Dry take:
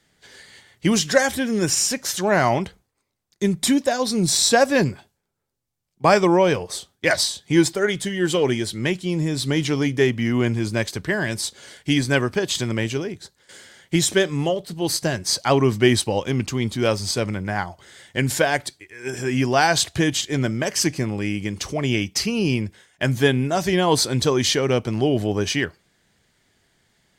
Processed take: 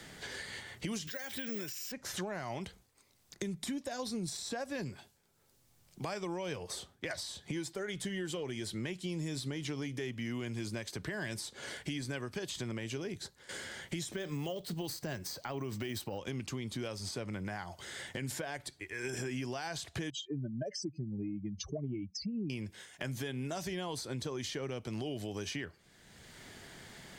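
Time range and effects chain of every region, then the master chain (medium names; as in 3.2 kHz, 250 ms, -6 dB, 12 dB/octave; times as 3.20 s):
1.07–1.92 s: frequency weighting D + careless resampling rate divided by 2×, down filtered, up zero stuff
14.12–16.18 s: careless resampling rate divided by 2×, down filtered, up hold + compression, threshold -18 dBFS
20.10–22.50 s: spectral contrast enhancement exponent 3.1 + upward expansion, over -36 dBFS
whole clip: compression 6:1, threshold -29 dBFS; peak limiter -23.5 dBFS; three bands compressed up and down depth 70%; trim -6 dB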